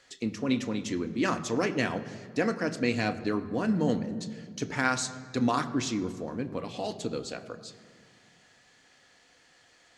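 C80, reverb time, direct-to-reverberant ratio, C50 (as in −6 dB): 14.0 dB, 1.9 s, 8.0 dB, 13.0 dB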